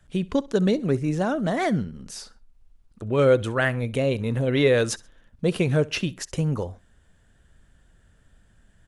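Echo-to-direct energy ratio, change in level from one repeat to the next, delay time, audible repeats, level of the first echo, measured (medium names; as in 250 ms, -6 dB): -21.5 dB, -10.0 dB, 65 ms, 2, -22.0 dB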